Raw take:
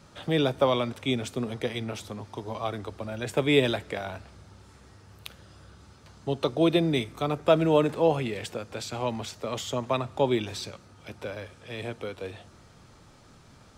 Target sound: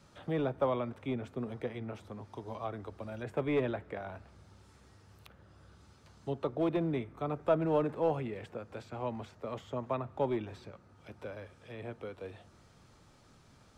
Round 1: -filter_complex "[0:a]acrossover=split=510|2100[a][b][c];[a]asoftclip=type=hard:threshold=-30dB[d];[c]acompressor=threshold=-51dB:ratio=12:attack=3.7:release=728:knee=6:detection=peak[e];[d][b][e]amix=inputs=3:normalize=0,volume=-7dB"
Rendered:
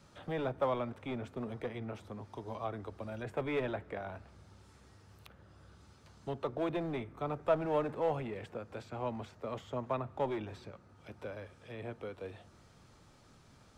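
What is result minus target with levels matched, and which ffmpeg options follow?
hard clip: distortion +10 dB
-filter_complex "[0:a]acrossover=split=510|2100[a][b][c];[a]asoftclip=type=hard:threshold=-21dB[d];[c]acompressor=threshold=-51dB:ratio=12:attack=3.7:release=728:knee=6:detection=peak[e];[d][b][e]amix=inputs=3:normalize=0,volume=-7dB"

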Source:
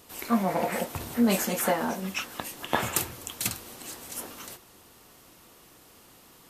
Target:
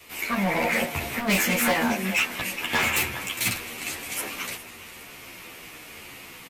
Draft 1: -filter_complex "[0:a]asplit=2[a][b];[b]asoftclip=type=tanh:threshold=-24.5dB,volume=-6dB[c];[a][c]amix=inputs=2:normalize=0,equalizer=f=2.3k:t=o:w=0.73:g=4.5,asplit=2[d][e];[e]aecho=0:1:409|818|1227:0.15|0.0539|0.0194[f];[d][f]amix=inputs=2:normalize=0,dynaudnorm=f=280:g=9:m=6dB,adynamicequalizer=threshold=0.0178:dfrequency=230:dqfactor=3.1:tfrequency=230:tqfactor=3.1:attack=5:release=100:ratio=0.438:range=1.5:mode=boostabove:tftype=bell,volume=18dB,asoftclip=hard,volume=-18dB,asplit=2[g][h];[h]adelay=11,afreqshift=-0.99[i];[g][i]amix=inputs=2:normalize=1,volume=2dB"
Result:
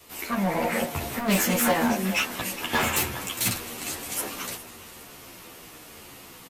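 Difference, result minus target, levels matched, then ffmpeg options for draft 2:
soft clip: distortion +7 dB; 2000 Hz band -3.5 dB
-filter_complex "[0:a]asplit=2[a][b];[b]asoftclip=type=tanh:threshold=-17.5dB,volume=-6dB[c];[a][c]amix=inputs=2:normalize=0,equalizer=f=2.3k:t=o:w=0.73:g=14.5,asplit=2[d][e];[e]aecho=0:1:409|818|1227:0.15|0.0539|0.0194[f];[d][f]amix=inputs=2:normalize=0,dynaudnorm=f=280:g=9:m=6dB,adynamicequalizer=threshold=0.0178:dfrequency=230:dqfactor=3.1:tfrequency=230:tqfactor=3.1:attack=5:release=100:ratio=0.438:range=1.5:mode=boostabove:tftype=bell,volume=18dB,asoftclip=hard,volume=-18dB,asplit=2[g][h];[h]adelay=11,afreqshift=-0.99[i];[g][i]amix=inputs=2:normalize=1,volume=2dB"

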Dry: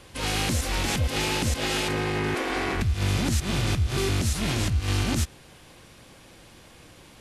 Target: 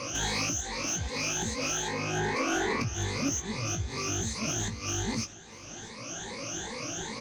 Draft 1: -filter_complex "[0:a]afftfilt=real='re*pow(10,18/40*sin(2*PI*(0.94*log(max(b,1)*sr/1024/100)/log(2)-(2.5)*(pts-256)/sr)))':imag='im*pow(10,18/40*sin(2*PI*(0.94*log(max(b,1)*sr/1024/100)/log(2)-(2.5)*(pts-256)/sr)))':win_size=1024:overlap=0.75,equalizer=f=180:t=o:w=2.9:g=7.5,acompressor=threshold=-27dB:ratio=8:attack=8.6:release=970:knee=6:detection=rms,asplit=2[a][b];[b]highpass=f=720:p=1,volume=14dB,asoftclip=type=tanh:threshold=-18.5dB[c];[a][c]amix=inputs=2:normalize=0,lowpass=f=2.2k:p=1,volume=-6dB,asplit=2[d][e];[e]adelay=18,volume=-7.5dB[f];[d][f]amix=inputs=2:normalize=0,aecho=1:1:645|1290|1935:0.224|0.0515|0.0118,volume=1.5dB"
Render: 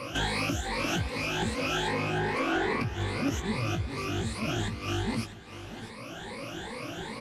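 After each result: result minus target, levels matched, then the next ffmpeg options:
8000 Hz band -12.0 dB; echo-to-direct +6.5 dB
-filter_complex "[0:a]afftfilt=real='re*pow(10,18/40*sin(2*PI*(0.94*log(max(b,1)*sr/1024/100)/log(2)-(2.5)*(pts-256)/sr)))':imag='im*pow(10,18/40*sin(2*PI*(0.94*log(max(b,1)*sr/1024/100)/log(2)-(2.5)*(pts-256)/sr)))':win_size=1024:overlap=0.75,lowpass=f=6.3k:t=q:w=16,equalizer=f=180:t=o:w=2.9:g=7.5,acompressor=threshold=-27dB:ratio=8:attack=8.6:release=970:knee=6:detection=rms,asplit=2[a][b];[b]highpass=f=720:p=1,volume=14dB,asoftclip=type=tanh:threshold=-18.5dB[c];[a][c]amix=inputs=2:normalize=0,lowpass=f=2.2k:p=1,volume=-6dB,asplit=2[d][e];[e]adelay=18,volume=-7.5dB[f];[d][f]amix=inputs=2:normalize=0,aecho=1:1:645|1290|1935:0.224|0.0515|0.0118,volume=1.5dB"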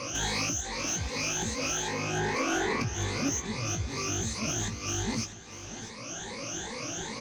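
echo-to-direct +6.5 dB
-filter_complex "[0:a]afftfilt=real='re*pow(10,18/40*sin(2*PI*(0.94*log(max(b,1)*sr/1024/100)/log(2)-(2.5)*(pts-256)/sr)))':imag='im*pow(10,18/40*sin(2*PI*(0.94*log(max(b,1)*sr/1024/100)/log(2)-(2.5)*(pts-256)/sr)))':win_size=1024:overlap=0.75,lowpass=f=6.3k:t=q:w=16,equalizer=f=180:t=o:w=2.9:g=7.5,acompressor=threshold=-27dB:ratio=8:attack=8.6:release=970:knee=6:detection=rms,asplit=2[a][b];[b]highpass=f=720:p=1,volume=14dB,asoftclip=type=tanh:threshold=-18.5dB[c];[a][c]amix=inputs=2:normalize=0,lowpass=f=2.2k:p=1,volume=-6dB,asplit=2[d][e];[e]adelay=18,volume=-7.5dB[f];[d][f]amix=inputs=2:normalize=0,aecho=1:1:645|1290:0.106|0.0244,volume=1.5dB"

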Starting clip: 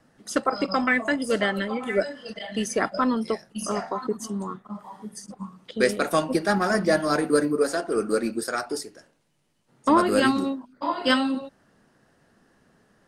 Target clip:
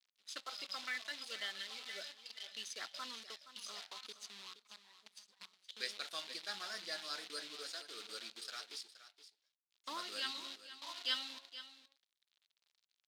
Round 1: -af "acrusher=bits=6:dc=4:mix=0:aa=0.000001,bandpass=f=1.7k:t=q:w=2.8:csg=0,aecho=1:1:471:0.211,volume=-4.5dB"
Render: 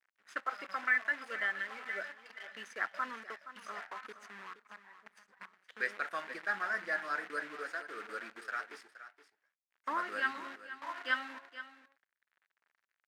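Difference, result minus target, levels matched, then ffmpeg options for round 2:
4000 Hz band -16.0 dB
-af "acrusher=bits=6:dc=4:mix=0:aa=0.000001,bandpass=f=3.9k:t=q:w=2.8:csg=0,aecho=1:1:471:0.211,volume=-4.5dB"

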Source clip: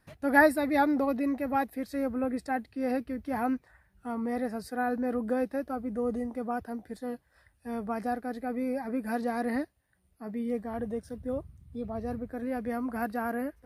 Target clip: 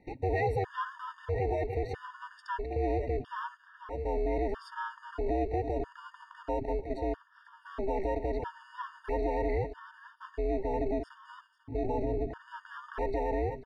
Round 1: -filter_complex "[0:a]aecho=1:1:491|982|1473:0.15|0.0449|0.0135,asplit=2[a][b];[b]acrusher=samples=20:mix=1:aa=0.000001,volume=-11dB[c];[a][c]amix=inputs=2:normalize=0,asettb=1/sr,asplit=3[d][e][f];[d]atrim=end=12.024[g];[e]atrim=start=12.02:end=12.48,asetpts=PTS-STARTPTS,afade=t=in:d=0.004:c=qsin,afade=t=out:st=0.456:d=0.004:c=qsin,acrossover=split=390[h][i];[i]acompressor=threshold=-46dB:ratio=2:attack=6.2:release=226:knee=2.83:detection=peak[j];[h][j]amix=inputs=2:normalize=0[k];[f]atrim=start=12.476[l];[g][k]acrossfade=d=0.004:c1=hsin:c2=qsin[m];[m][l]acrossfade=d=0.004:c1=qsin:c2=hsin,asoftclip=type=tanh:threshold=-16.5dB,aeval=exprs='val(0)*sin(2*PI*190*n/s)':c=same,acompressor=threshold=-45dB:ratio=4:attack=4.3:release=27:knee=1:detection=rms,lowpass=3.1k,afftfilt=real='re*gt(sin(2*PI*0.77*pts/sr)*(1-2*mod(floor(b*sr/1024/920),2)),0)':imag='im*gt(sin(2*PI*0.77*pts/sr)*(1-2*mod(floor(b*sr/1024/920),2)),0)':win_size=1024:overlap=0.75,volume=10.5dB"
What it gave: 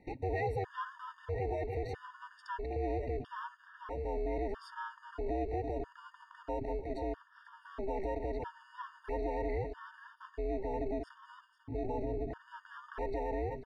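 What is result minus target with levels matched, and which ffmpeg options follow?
compressor: peak gain reduction +5 dB
-filter_complex "[0:a]aecho=1:1:491|982|1473:0.15|0.0449|0.0135,asplit=2[a][b];[b]acrusher=samples=20:mix=1:aa=0.000001,volume=-11dB[c];[a][c]amix=inputs=2:normalize=0,asettb=1/sr,asplit=3[d][e][f];[d]atrim=end=12.024[g];[e]atrim=start=12.02:end=12.48,asetpts=PTS-STARTPTS,afade=t=in:d=0.004:c=qsin,afade=t=out:st=0.456:d=0.004:c=qsin,acrossover=split=390[h][i];[i]acompressor=threshold=-46dB:ratio=2:attack=6.2:release=226:knee=2.83:detection=peak[j];[h][j]amix=inputs=2:normalize=0[k];[f]atrim=start=12.476[l];[g][k]acrossfade=d=0.004:c1=hsin:c2=qsin[m];[m][l]acrossfade=d=0.004:c1=qsin:c2=hsin,asoftclip=type=tanh:threshold=-16.5dB,aeval=exprs='val(0)*sin(2*PI*190*n/s)':c=same,acompressor=threshold=-38.5dB:ratio=4:attack=4.3:release=27:knee=1:detection=rms,lowpass=3.1k,afftfilt=real='re*gt(sin(2*PI*0.77*pts/sr)*(1-2*mod(floor(b*sr/1024/920),2)),0)':imag='im*gt(sin(2*PI*0.77*pts/sr)*(1-2*mod(floor(b*sr/1024/920),2)),0)':win_size=1024:overlap=0.75,volume=10.5dB"

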